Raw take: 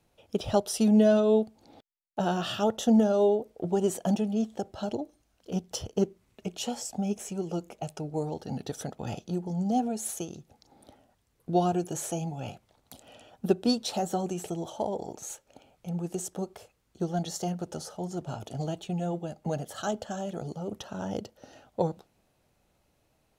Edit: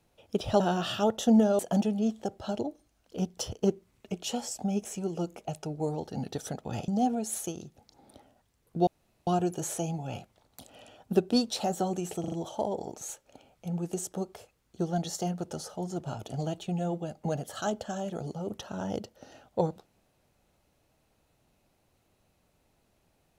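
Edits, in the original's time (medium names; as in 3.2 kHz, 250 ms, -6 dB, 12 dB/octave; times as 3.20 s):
0.60–2.20 s: delete
3.19–3.93 s: delete
9.22–9.61 s: delete
11.60 s: insert room tone 0.40 s
14.53 s: stutter 0.04 s, 4 plays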